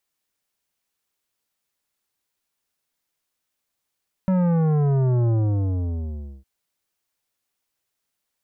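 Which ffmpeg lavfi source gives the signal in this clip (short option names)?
-f lavfi -i "aevalsrc='0.126*clip((2.16-t)/1.15,0,1)*tanh(3.98*sin(2*PI*190*2.16/log(65/190)*(exp(log(65/190)*t/2.16)-1)))/tanh(3.98)':d=2.16:s=44100"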